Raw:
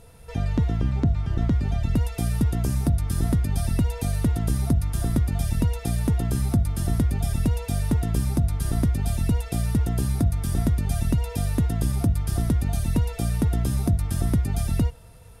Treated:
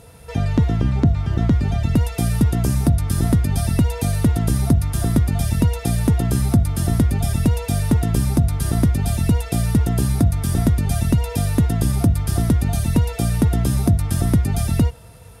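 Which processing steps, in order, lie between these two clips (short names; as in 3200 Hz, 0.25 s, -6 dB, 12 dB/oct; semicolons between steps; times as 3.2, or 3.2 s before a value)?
HPF 62 Hz; gain +6.5 dB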